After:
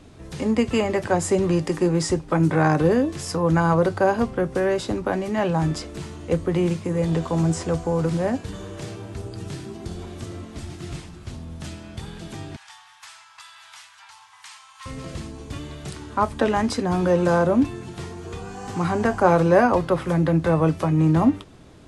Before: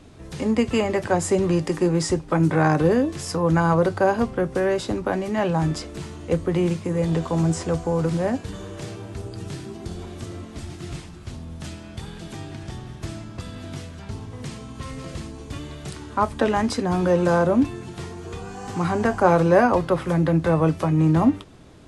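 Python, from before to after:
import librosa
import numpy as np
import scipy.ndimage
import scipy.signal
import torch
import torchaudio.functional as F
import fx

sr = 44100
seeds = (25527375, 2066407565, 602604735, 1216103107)

y = fx.ellip_highpass(x, sr, hz=860.0, order=4, stop_db=40, at=(12.56, 14.86))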